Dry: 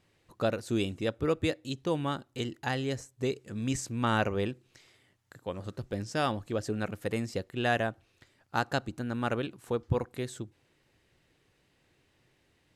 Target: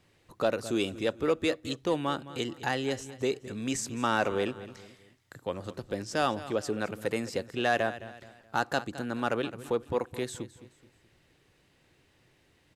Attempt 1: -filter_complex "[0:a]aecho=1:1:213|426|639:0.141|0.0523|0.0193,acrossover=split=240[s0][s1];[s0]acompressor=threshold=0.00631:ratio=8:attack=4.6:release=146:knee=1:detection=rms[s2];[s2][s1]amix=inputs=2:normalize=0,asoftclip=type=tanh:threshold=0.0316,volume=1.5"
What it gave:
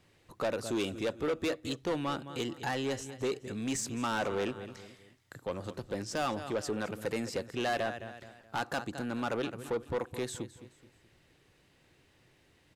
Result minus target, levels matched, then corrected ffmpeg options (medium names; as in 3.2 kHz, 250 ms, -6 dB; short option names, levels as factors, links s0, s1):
saturation: distortion +11 dB
-filter_complex "[0:a]aecho=1:1:213|426|639:0.141|0.0523|0.0193,acrossover=split=240[s0][s1];[s0]acompressor=threshold=0.00631:ratio=8:attack=4.6:release=146:knee=1:detection=rms[s2];[s2][s1]amix=inputs=2:normalize=0,asoftclip=type=tanh:threshold=0.119,volume=1.5"